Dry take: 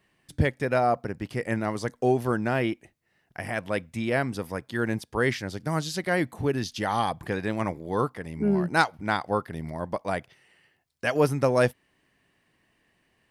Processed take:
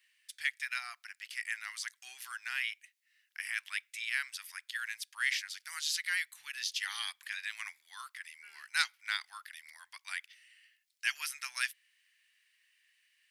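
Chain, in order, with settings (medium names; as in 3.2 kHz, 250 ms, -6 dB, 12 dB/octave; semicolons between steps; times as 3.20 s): inverse Chebyshev high-pass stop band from 560 Hz, stop band 60 dB; in parallel at -8 dB: saturation -24 dBFS, distortion -16 dB; on the sum: trim -1 dB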